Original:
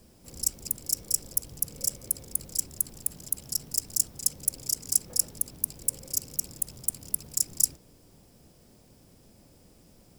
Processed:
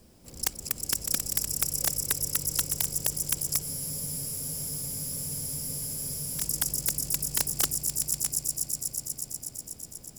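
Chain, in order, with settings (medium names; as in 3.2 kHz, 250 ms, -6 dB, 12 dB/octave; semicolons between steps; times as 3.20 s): echo with a slow build-up 122 ms, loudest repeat 5, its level -8.5 dB; integer overflow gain 14 dB; spectral freeze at 3.64 s, 2.76 s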